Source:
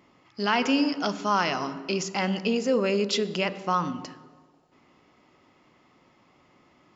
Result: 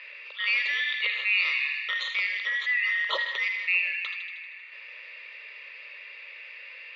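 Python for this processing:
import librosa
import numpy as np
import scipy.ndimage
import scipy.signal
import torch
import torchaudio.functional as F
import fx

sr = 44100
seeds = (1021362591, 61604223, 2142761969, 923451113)

y = fx.band_shuffle(x, sr, order='3142')
y = scipy.signal.sosfilt(scipy.signal.ellip(3, 1.0, 40, [540.0, 4500.0], 'bandpass', fs=sr, output='sos'), y)
y = fx.fixed_phaser(y, sr, hz=1100.0, stages=8)
y = fx.echo_wet_highpass(y, sr, ms=78, feedback_pct=55, hz=1900.0, wet_db=-9.0)
y = fx.env_flatten(y, sr, amount_pct=50)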